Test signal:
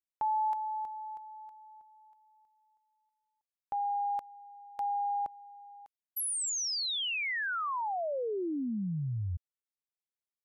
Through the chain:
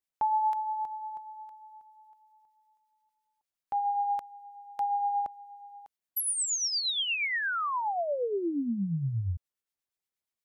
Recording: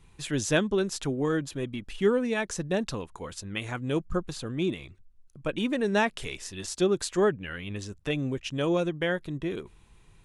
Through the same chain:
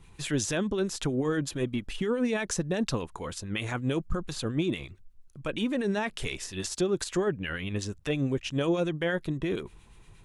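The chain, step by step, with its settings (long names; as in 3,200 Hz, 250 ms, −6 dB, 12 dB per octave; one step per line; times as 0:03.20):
brickwall limiter −23.5 dBFS
two-band tremolo in antiphase 8.5 Hz, depth 50%, crossover 1,300 Hz
level +5.5 dB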